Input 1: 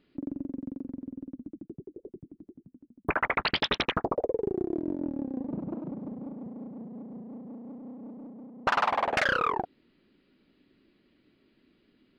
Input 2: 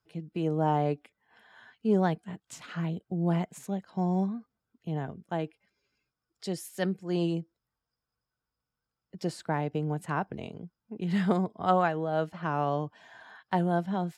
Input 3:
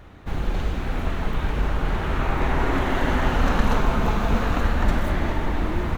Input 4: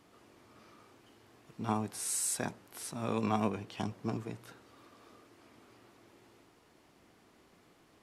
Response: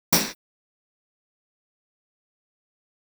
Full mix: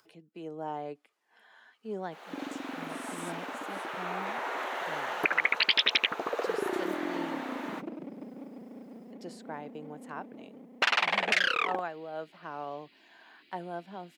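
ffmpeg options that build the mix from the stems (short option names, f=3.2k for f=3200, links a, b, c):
-filter_complex "[0:a]highshelf=f=1.6k:t=q:w=1.5:g=11,adelay=2150,volume=-0.5dB[a];[1:a]acompressor=mode=upward:threshold=-41dB:ratio=2.5,volume=-9dB[b];[2:a]highpass=f=470:w=0.5412,highpass=f=470:w=1.3066,dynaudnorm=f=270:g=3:m=12dB,adelay=1850,volume=-18.5dB[c];[3:a]highpass=f=1.2k:p=1,adelay=950,volume=-15.5dB[d];[a][b][c][d]amix=inputs=4:normalize=0,highpass=300,alimiter=limit=-12.5dB:level=0:latency=1:release=465"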